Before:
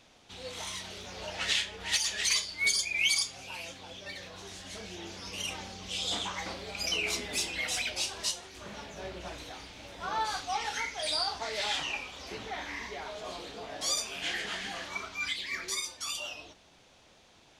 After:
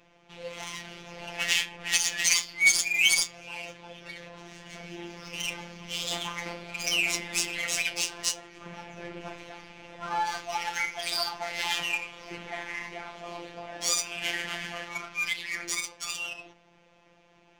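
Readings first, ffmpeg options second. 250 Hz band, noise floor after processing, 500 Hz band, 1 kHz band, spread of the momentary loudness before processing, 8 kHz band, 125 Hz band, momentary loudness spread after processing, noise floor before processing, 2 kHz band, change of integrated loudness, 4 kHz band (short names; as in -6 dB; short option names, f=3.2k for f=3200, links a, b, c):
+2.5 dB, -61 dBFS, +0.5 dB, +1.5 dB, 15 LU, +5.0 dB, +1.5 dB, 20 LU, -60 dBFS, +5.5 dB, +4.5 dB, +1.5 dB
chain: -af "aexciter=amount=1.8:drive=1.1:freq=2.1k,adynamicsmooth=sensitivity=6.5:basefreq=2.4k,afftfilt=real='hypot(re,im)*cos(PI*b)':imag='0':win_size=1024:overlap=0.75,volume=5dB"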